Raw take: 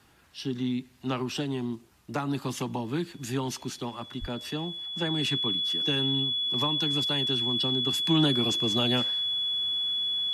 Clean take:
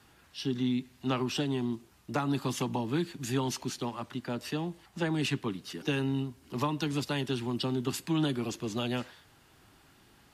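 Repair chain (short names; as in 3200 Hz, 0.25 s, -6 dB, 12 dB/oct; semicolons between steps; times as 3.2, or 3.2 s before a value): notch 3400 Hz, Q 30; 4.2–4.32 HPF 140 Hz 24 dB/oct; gain 0 dB, from 8.05 s -5 dB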